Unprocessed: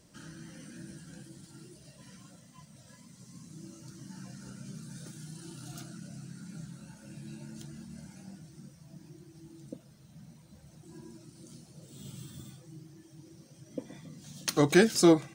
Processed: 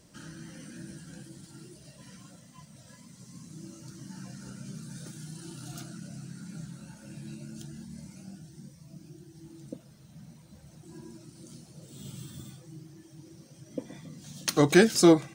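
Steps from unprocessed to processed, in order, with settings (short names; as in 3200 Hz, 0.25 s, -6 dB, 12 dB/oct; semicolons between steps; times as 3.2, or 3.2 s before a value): 7.34–9.41 cascading phaser rising 1.3 Hz; gain +2.5 dB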